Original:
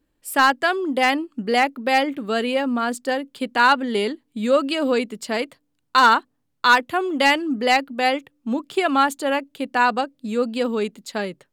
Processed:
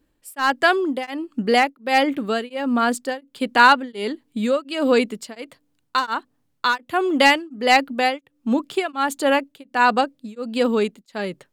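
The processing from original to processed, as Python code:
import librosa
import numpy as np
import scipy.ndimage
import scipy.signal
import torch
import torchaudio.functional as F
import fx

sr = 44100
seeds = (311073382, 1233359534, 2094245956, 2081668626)

y = x * np.abs(np.cos(np.pi * 1.4 * np.arange(len(x)) / sr))
y = F.gain(torch.from_numpy(y), 4.0).numpy()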